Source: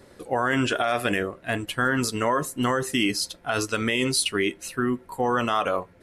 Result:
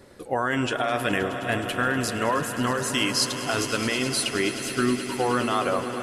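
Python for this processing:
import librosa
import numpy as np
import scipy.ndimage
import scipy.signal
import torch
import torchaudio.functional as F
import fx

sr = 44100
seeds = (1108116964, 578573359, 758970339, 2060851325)

y = fx.peak_eq(x, sr, hz=6100.0, db=9.5, octaves=2.4, at=(2.81, 3.37))
y = fx.rider(y, sr, range_db=3, speed_s=0.5)
y = fx.echo_swell(y, sr, ms=105, loudest=5, wet_db=-14.5)
y = y * 10.0 ** (-2.0 / 20.0)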